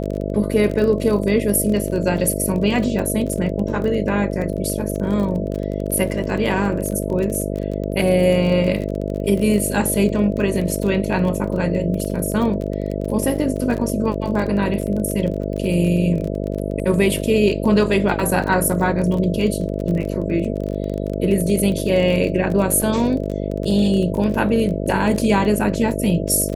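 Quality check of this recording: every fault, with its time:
buzz 50 Hz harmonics 13 -24 dBFS
crackle 29/s -25 dBFS
22.82 gap 3.2 ms

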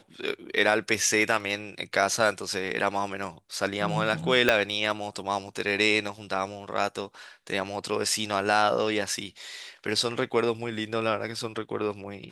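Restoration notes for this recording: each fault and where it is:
4.49 pop -7 dBFS

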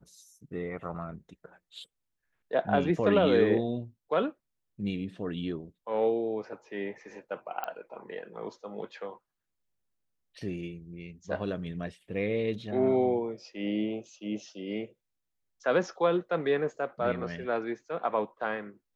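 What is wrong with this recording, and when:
7.64 pop -20 dBFS

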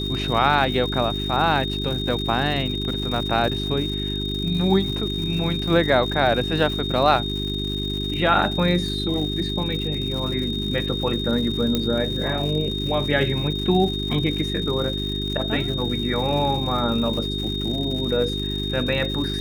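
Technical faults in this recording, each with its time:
crackle 200/s -30 dBFS
hum 50 Hz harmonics 8 -28 dBFS
tone 3700 Hz -28 dBFS
11.75 pop -8 dBFS

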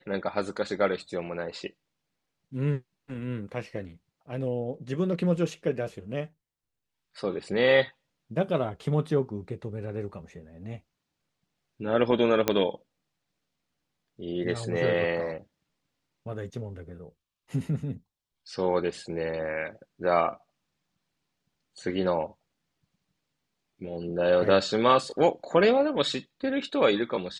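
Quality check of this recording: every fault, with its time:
12.48 pop -8 dBFS

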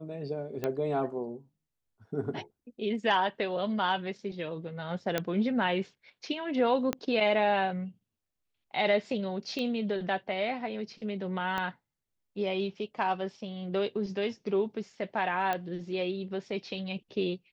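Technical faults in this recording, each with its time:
0.64 pop -18 dBFS
5.18 pop -13 dBFS
6.93 pop -15 dBFS
9.59 pop -21 dBFS
11.58 pop -19 dBFS
15.53 pop -18 dBFS

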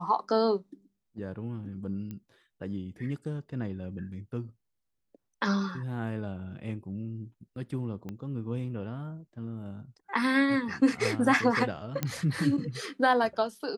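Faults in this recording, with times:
2.11 pop -27 dBFS
8.09 pop -26 dBFS
12.03 pop -14 dBFS

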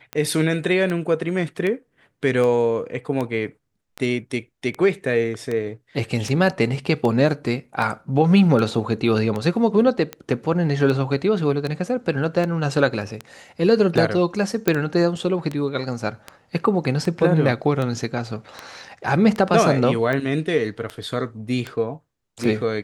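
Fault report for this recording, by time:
tick 78 rpm -14 dBFS
14.68 pop -4 dBFS

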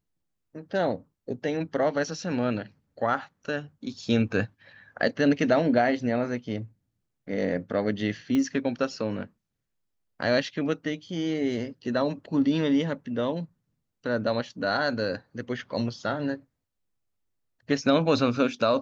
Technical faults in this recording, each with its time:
8.35 pop -16 dBFS

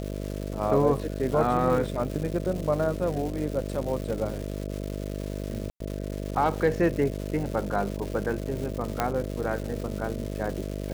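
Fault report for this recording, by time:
buzz 50 Hz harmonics 13 -33 dBFS
crackle 420/s -33 dBFS
5.7–5.8 gap 0.103 s
9 pop -10 dBFS

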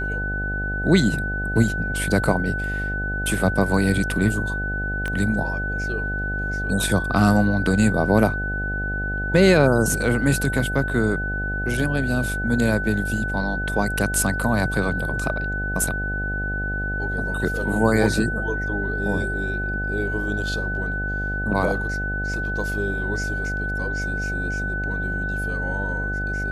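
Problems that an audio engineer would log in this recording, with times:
buzz 50 Hz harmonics 16 -28 dBFS
tone 1500 Hz -26 dBFS
5.08 pop -16 dBFS

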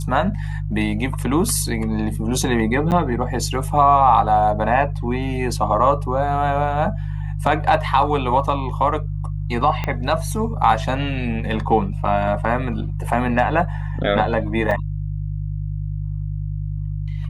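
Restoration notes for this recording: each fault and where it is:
hum 50 Hz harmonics 3 -25 dBFS
2.91–2.92 gap 8.7 ms
9.84 pop -10 dBFS
14.71 gap 4.1 ms

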